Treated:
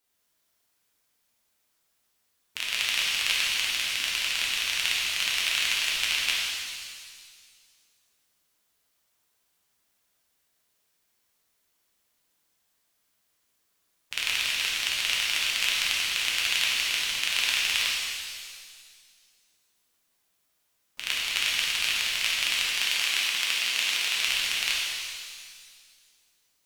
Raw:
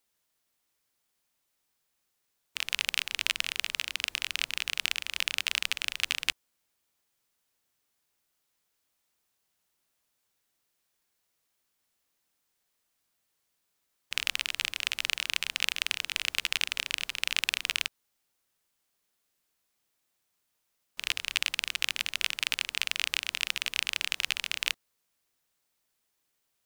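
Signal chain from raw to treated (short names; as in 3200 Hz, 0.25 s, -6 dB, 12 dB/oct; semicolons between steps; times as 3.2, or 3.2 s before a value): 22.67–24.14 HPF 190 Hz 24 dB/oct; shimmer reverb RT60 1.9 s, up +7 st, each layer -8 dB, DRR -5 dB; gain -1.5 dB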